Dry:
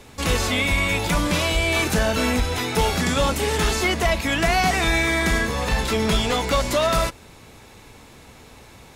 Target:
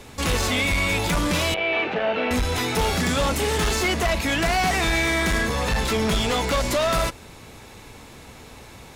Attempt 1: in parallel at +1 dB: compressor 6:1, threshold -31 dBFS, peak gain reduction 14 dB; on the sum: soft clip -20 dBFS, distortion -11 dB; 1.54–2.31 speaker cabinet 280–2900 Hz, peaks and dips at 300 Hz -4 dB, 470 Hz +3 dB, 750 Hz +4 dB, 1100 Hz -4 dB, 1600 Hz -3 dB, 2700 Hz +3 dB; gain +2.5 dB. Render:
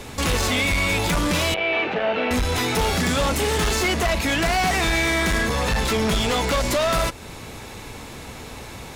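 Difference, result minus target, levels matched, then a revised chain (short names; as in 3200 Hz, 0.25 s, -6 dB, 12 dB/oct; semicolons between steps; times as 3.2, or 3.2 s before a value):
compressor: peak gain reduction +14 dB
soft clip -20 dBFS, distortion -12 dB; 1.54–2.31 speaker cabinet 280–2900 Hz, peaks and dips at 300 Hz -4 dB, 470 Hz +3 dB, 750 Hz +4 dB, 1100 Hz -4 dB, 1600 Hz -3 dB, 2700 Hz +3 dB; gain +2.5 dB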